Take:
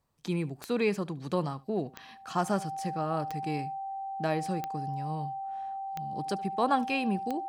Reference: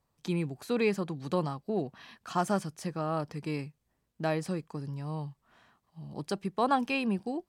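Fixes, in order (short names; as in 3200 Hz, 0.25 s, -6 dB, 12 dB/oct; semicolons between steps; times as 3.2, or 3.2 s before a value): de-click; notch 780 Hz, Q 30; inverse comb 73 ms -21.5 dB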